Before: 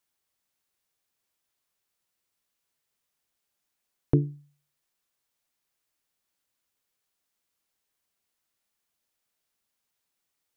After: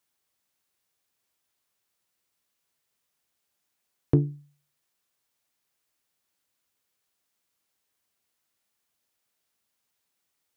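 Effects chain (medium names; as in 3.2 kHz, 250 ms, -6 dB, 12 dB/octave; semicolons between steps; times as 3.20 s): high-pass 45 Hz; in parallel at -10.5 dB: saturation -21 dBFS, distortion -9 dB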